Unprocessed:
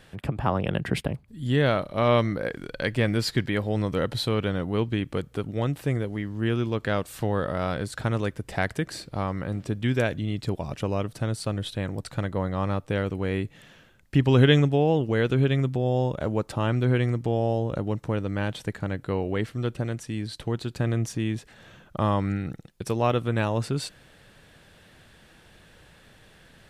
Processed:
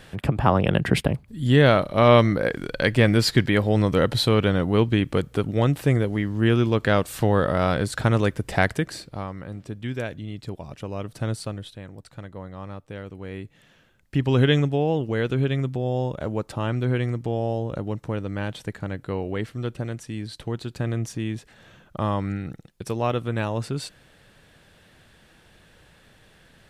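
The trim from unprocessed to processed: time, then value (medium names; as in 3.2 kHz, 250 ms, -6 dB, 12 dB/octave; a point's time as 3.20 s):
8.63 s +6 dB
9.34 s -5.5 dB
10.90 s -5.5 dB
11.30 s +1.5 dB
11.80 s -10 dB
13.02 s -10 dB
14.34 s -1 dB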